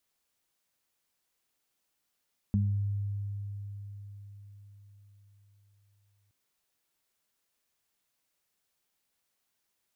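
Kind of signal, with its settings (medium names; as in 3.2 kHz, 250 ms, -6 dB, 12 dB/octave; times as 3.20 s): additive tone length 3.77 s, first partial 101 Hz, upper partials 0 dB, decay 4.96 s, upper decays 0.46 s, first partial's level -24 dB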